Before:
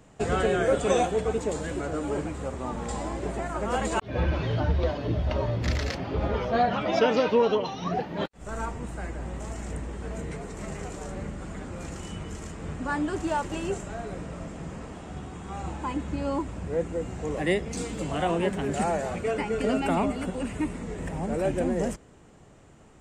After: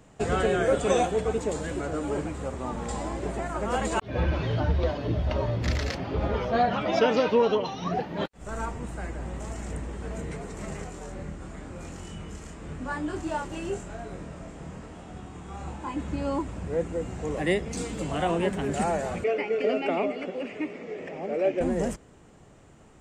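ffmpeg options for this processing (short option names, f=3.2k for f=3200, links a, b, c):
-filter_complex "[0:a]asplit=3[a][b][c];[a]afade=t=out:st=10.83:d=0.02[d];[b]flanger=delay=22.5:depth=5:speed=1,afade=t=in:st=10.83:d=0.02,afade=t=out:st=15.96:d=0.02[e];[c]afade=t=in:st=15.96:d=0.02[f];[d][e][f]amix=inputs=3:normalize=0,asettb=1/sr,asplit=3[g][h][i];[g]atrim=end=19.244[j];[h]atrim=start=19.24:end=21.61,asetpts=PTS-STARTPTS,afade=t=in:d=0.004:c=qsin,afade=t=out:st=2.366:d=0.004:c=qsin,highpass=330,equalizer=f=410:t=q:w=4:g=5,equalizer=f=590:t=q:w=4:g=4,equalizer=f=960:t=q:w=4:g=-9,equalizer=f=1.5k:t=q:w=4:g=-6,equalizer=f=2.3k:t=q:w=4:g=6,equalizer=f=3.9k:t=q:w=4:g=-7,lowpass=f=5k:w=0.5412,lowpass=f=5k:w=1.3066[k];[i]atrim=start=21.606[l];[j][k]acrossfade=d=0.004:c1=hsin:c2=qsin[m];[m][l]acrossfade=d=0.004:c1=qsin:c2=hsin"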